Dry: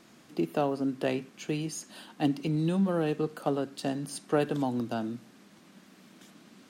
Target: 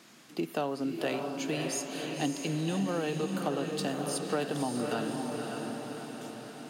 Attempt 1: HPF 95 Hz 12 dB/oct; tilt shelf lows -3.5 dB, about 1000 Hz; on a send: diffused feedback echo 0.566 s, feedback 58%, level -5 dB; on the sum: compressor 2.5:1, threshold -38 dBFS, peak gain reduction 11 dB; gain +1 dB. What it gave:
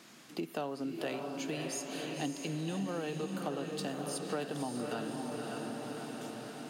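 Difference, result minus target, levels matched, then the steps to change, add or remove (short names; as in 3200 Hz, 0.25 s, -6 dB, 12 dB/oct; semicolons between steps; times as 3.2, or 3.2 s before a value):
compressor: peak gain reduction +5.5 dB
change: compressor 2.5:1, threshold -29 dBFS, peak gain reduction 5.5 dB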